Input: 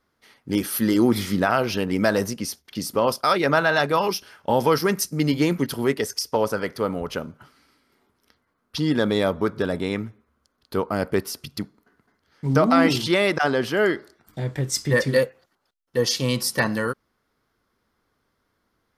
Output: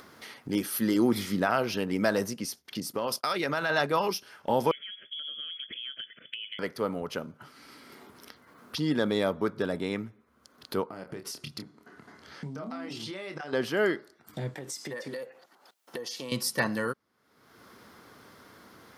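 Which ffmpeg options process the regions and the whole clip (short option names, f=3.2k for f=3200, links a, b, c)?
-filter_complex "[0:a]asettb=1/sr,asplit=3[a][b][c];[a]atrim=end=2.804[d];[b]atrim=start=2.8:end=3.7,asetpts=PTS-STARTPTS,afade=t=in:d=0.004:c=qsin,afade=t=out:st=0.896:d=0.004:c=qsin,agate=range=-33dB:threshold=-36dB:ratio=3:release=100:detection=peak,acompressor=threshold=-21dB:ratio=4:attack=3.2:release=140:knee=1:detection=peak,adynamicequalizer=threshold=0.0158:dfrequency=1600:dqfactor=0.7:tfrequency=1600:tqfactor=0.7:attack=5:release=100:ratio=0.375:range=2.5:mode=boostabove:tftype=highshelf[e];[c]atrim=start=3.696[f];[d][e]acrossfade=d=0.004:c1=hsin:c2=qsin[g];[g][f]acrossfade=d=0.004:c1=qsin:c2=hsin,asettb=1/sr,asplit=3[h][i][j];[h]atrim=end=4.714[k];[i]atrim=start=4.71:end=6.59,asetpts=PTS-STARTPTS,afade=t=in:d=0.004:c=qsin,afade=t=out:st=1.876:d=0.004:c=qsin,lowpass=f=3k:t=q:w=0.5098,lowpass=f=3k:t=q:w=0.6013,lowpass=f=3k:t=q:w=0.9,lowpass=f=3k:t=q:w=2.563,afreqshift=-3500,asuperstop=centerf=890:order=4:qfactor=0.97,acompressor=threshold=-35dB:ratio=5:attack=3.2:release=140:knee=1:detection=peak[l];[j]atrim=start=6.586[m];[k][l]acrossfade=d=0.004:c1=hsin:c2=qsin[n];[n][m]acrossfade=d=0.004:c1=qsin:c2=hsin,asettb=1/sr,asplit=3[o][p][q];[o]atrim=end=10.894[r];[p]atrim=start=10.89:end=13.53,asetpts=PTS-STARTPTS,afade=t=in:d=0.004:c=qsin,afade=t=out:st=2.636:d=0.004:c=qsin,lowpass=10k,acompressor=threshold=-32dB:ratio=10:attack=3.2:release=140:knee=1:detection=peak,asplit=2[s][t];[t]adelay=27,volume=-6.5dB[u];[s][u]amix=inputs=2:normalize=0,atrim=end_sample=116424[v];[q]atrim=start=13.526[w];[r][v]acrossfade=d=0.004:c1=hsin:c2=qsin[x];[x][w]acrossfade=d=0.004:c1=qsin:c2=hsin,asettb=1/sr,asplit=3[y][z][aa];[y]atrim=end=14.544[ab];[z]atrim=start=14.54:end=16.32,asetpts=PTS-STARTPTS,afade=t=in:d=0.004:c=qsin,afade=t=out:st=1.776:d=0.004:c=qsin,highpass=240,equalizer=f=800:t=o:w=0.68:g=5,acompressor=threshold=-31dB:ratio=6:attack=3.2:release=140:knee=1:detection=peak[ac];[aa]atrim=start=16.316[ad];[ab][ac]acrossfade=d=0.004:c1=hsin:c2=qsin[ae];[ae][ad]acrossfade=d=0.004:c1=qsin:c2=hsin,highpass=120,acompressor=mode=upward:threshold=-27dB:ratio=2.5,volume=-5.5dB"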